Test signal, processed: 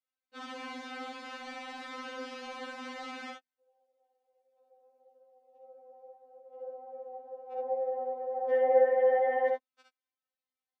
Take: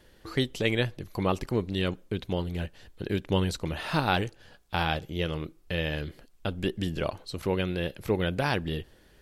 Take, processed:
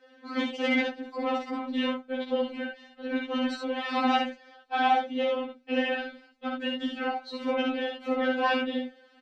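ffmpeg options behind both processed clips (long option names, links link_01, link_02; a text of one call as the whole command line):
ffmpeg -i in.wav -filter_complex "[0:a]afftfilt=real='hypot(re,im)*cos(2*PI*random(0))':imag='hypot(re,im)*sin(2*PI*random(1))':win_size=512:overlap=0.75,equalizer=frequency=310:width=4.7:gain=-11.5,asplit=2[link_01][link_02];[link_02]aeval=exprs='0.126*sin(PI/2*3.16*val(0)/0.126)':channel_layout=same,volume=-4dB[link_03];[link_01][link_03]amix=inputs=2:normalize=0,highpass=110,lowpass=5000,aemphasis=mode=reproduction:type=75fm,aecho=1:1:55|68:0.531|0.596,afftfilt=real='re*3.46*eq(mod(b,12),0)':imag='im*3.46*eq(mod(b,12),0)':win_size=2048:overlap=0.75" out.wav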